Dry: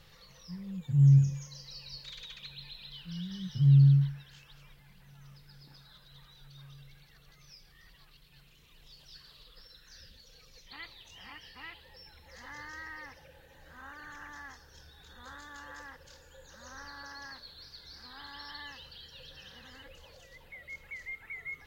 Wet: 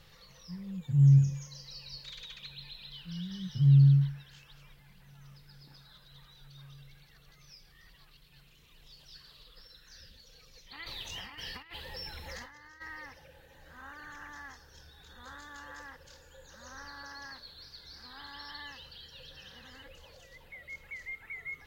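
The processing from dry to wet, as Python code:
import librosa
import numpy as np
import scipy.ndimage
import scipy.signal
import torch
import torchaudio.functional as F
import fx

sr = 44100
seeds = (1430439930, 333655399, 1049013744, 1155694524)

y = fx.over_compress(x, sr, threshold_db=-52.0, ratio=-0.5, at=(10.84, 12.8), fade=0.02)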